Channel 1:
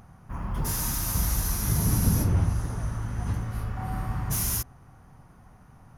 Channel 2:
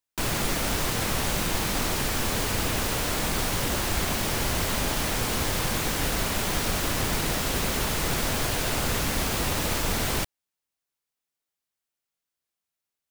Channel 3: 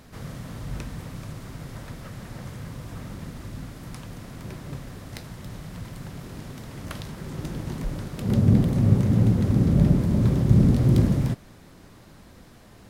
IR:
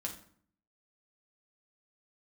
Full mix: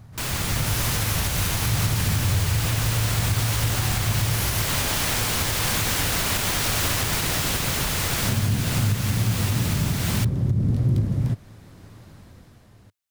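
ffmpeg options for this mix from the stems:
-filter_complex "[0:a]equalizer=f=130:w=1.5:g=5,alimiter=limit=-18.5dB:level=0:latency=1,volume=-4dB[a];[1:a]tiltshelf=f=780:g=-4.5,volume=-3.5dB[b];[2:a]volume=-7.5dB[c];[a][b][c]amix=inputs=3:normalize=0,equalizer=f=100:t=o:w=0.99:g=9.5,dynaudnorm=f=120:g=17:m=11.5dB,alimiter=limit=-13dB:level=0:latency=1:release=452"

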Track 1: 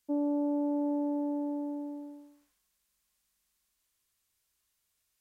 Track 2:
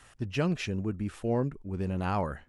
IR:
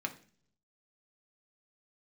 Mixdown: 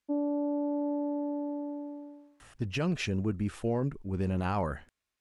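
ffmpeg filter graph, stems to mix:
-filter_complex "[0:a]aemphasis=mode=reproduction:type=75fm,volume=-3dB,asplit=2[a][b];[b]volume=-8dB[c];[1:a]alimiter=limit=-23dB:level=0:latency=1:release=30,adelay=2400,volume=1.5dB[d];[2:a]atrim=start_sample=2205[e];[c][e]afir=irnorm=-1:irlink=0[f];[a][d][f]amix=inputs=3:normalize=0"

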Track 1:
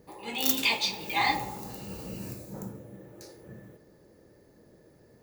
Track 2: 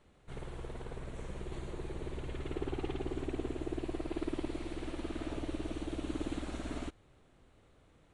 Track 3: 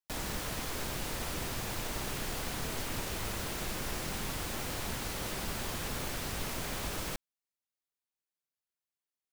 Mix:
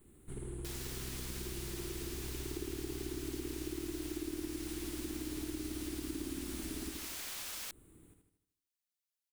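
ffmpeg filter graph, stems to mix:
-filter_complex "[1:a]lowshelf=f=450:t=q:w=3:g=7,aexciter=amount=14.6:drive=7.3:freq=8.3k,volume=-5.5dB,asplit=2[a][b];[b]volume=-6dB[c];[2:a]highpass=f=1.1k:p=1,highshelf=f=2k:g=9,adelay=550,volume=-7dB[d];[c]aecho=0:1:78|156|234|312|390|468|546:1|0.5|0.25|0.125|0.0625|0.0312|0.0156[e];[a][d][e]amix=inputs=3:normalize=0,acompressor=threshold=-40dB:ratio=3"

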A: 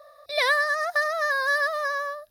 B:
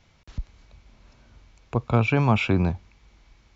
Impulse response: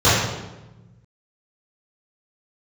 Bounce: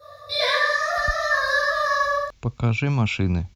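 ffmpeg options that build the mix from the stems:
-filter_complex "[0:a]acompressor=threshold=-27dB:ratio=6,volume=-6.5dB,asplit=2[a][b];[b]volume=-3.5dB[c];[1:a]crystalizer=i=1:c=0,adelay=700,volume=2dB[d];[2:a]atrim=start_sample=2205[e];[c][e]afir=irnorm=-1:irlink=0[f];[a][d][f]amix=inputs=3:normalize=0,equalizer=f=730:t=o:w=2.9:g=-9.5"

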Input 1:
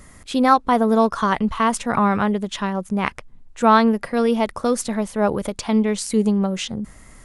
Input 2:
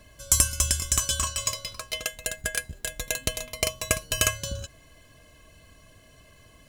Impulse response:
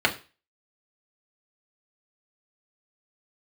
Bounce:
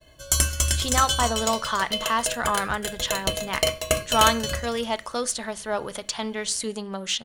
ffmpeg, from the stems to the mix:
-filter_complex "[0:a]lowpass=9.9k,tiltshelf=f=920:g=-9,acontrast=47,adelay=500,volume=-11.5dB,asplit=2[a][b];[b]volume=-23.5dB[c];[1:a]agate=range=-33dB:threshold=-49dB:ratio=3:detection=peak,volume=-2.5dB,asplit=3[d][e][f];[e]volume=-10.5dB[g];[f]volume=-11.5dB[h];[2:a]atrim=start_sample=2205[i];[c][g]amix=inputs=2:normalize=0[j];[j][i]afir=irnorm=-1:irlink=0[k];[h]aecho=0:1:282|564|846|1128:1|0.26|0.0676|0.0176[l];[a][d][k][l]amix=inputs=4:normalize=0"

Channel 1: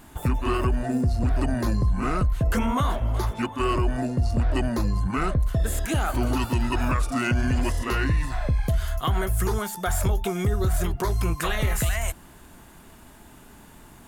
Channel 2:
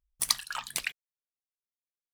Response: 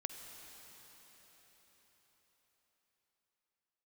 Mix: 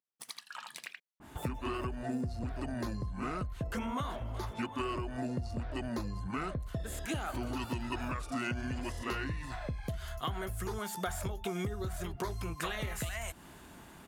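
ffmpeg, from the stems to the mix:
-filter_complex "[0:a]acompressor=threshold=-29dB:ratio=6,adynamicequalizer=threshold=0.00141:dfrequency=2400:dqfactor=0.7:tfrequency=2400:tqfactor=0.7:attack=5:release=100:ratio=0.375:range=2.5:mode=boostabove:tftype=highshelf,adelay=1200,volume=-2.5dB[a];[1:a]highpass=f=170:w=0.5412,highpass=f=170:w=1.3066,acompressor=threshold=-36dB:ratio=6,volume=-3dB,asplit=2[b][c];[c]volume=-3dB,aecho=0:1:78:1[d];[a][b][d]amix=inputs=3:normalize=0,highpass=f=88:p=1,highshelf=f=5.7k:g=-10"

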